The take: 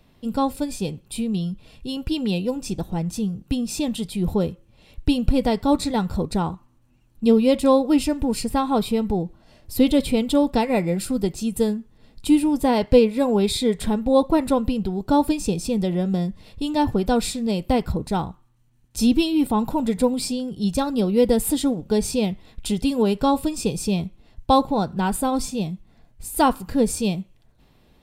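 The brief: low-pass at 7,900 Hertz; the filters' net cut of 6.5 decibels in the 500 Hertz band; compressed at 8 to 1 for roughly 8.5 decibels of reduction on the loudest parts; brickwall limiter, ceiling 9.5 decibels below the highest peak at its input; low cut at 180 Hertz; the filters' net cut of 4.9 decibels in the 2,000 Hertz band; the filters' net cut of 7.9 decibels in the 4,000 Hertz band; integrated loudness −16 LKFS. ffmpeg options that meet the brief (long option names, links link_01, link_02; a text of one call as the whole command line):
ffmpeg -i in.wav -af "highpass=180,lowpass=7900,equalizer=frequency=500:width_type=o:gain=-7,equalizer=frequency=2000:width_type=o:gain=-3.5,equalizer=frequency=4000:width_type=o:gain=-8.5,acompressor=threshold=-24dB:ratio=8,volume=17.5dB,alimiter=limit=-7dB:level=0:latency=1" out.wav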